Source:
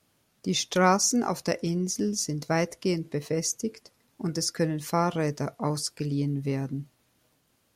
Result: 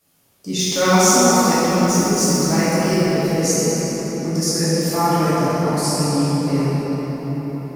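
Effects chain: 0.59–3.10 s: companding laws mixed up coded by mu; treble shelf 8 kHz +11.5 dB; reverberation RT60 5.8 s, pre-delay 6 ms, DRR -12 dB; trim -3 dB

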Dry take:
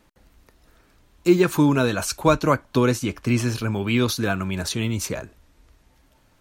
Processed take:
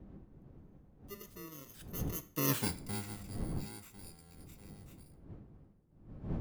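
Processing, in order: bit-reversed sample order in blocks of 64 samples; Doppler pass-by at 2.58 s, 48 m/s, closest 3.9 m; wind noise 190 Hz -40 dBFS; on a send: reverberation RT60 0.45 s, pre-delay 3 ms, DRR 8.5 dB; on the sum: trim -6.5 dB

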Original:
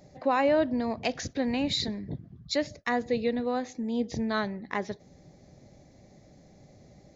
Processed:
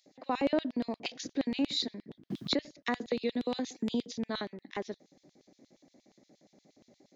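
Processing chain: LFO high-pass square 8.5 Hz 270–3300 Hz; 2.30–4.13 s: three bands compressed up and down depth 100%; trim -6.5 dB

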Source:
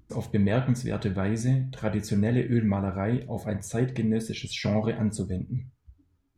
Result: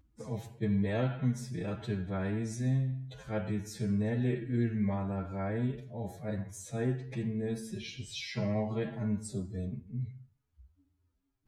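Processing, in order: time stretch by phase-locked vocoder 1.8×; de-hum 73.57 Hz, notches 5; attacks held to a fixed rise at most 580 dB/s; trim -6.5 dB

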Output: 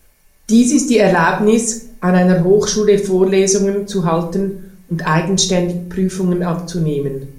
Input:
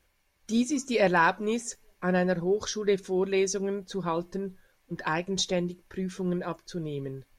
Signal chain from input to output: FFT filter 150 Hz 0 dB, 3.4 kHz -6 dB, 9.2 kHz +5 dB; simulated room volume 610 m³, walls furnished, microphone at 1.5 m; loudness maximiser +15.5 dB; trim -1 dB

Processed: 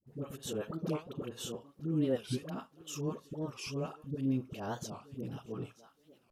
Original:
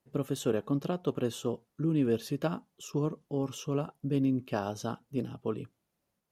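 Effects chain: thinning echo 920 ms, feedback 49%, high-pass 800 Hz, level -21.5 dB; on a send at -16 dB: reverberation, pre-delay 3 ms; on the sum: slow attack 146 ms; in parallel at +1 dB: compression, threshold -40 dBFS, peak gain reduction 16 dB; on the sum: phase dispersion highs, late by 71 ms, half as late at 660 Hz; warped record 45 rpm, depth 250 cents; trim -4.5 dB

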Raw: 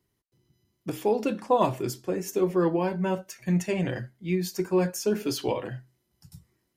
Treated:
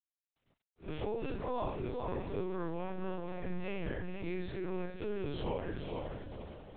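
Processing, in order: spectral blur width 98 ms; echo that smears into a reverb 492 ms, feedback 40%, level -9.5 dB; harmonic-percussive split harmonic -10 dB; companded quantiser 6-bit; transient shaper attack -7 dB, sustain +2 dB; LPC vocoder at 8 kHz pitch kept; compression, threshold -38 dBFS, peak gain reduction 11 dB; trim +5.5 dB

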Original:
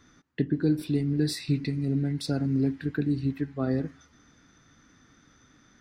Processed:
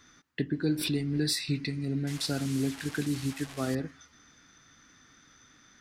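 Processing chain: 2.07–3.75 s: one-bit delta coder 64 kbps, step -37.5 dBFS; tilt shelf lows -5 dB; 0.66–1.39 s: swell ahead of each attack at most 47 dB/s

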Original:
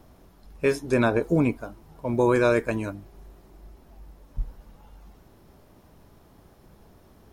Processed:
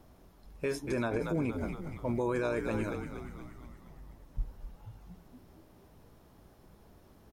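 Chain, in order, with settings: frequency-shifting echo 235 ms, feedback 59%, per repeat -72 Hz, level -11 dB; peak limiter -18 dBFS, peak gain reduction 8.5 dB; trim -5 dB

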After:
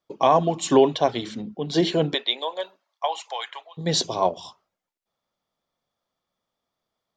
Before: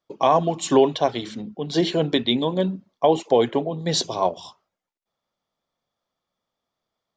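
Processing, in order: 2.13–3.77 s: high-pass 480 Hz -> 1.2 kHz 24 dB/octave

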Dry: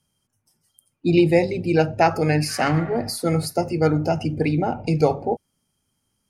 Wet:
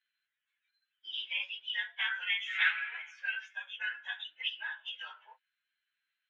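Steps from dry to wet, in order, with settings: frequency axis rescaled in octaves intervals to 110%; peak limiter -15.5 dBFS, peak gain reduction 9 dB; elliptic band-pass 1.5–3.4 kHz, stop band 80 dB; trim +5.5 dB

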